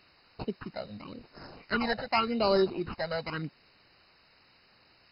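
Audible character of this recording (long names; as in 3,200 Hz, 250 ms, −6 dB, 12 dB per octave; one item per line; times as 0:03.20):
aliases and images of a low sample rate 3,500 Hz, jitter 0%
phaser sweep stages 8, 0.88 Hz, lowest notch 320–2,400 Hz
a quantiser's noise floor 10 bits, dither triangular
MP2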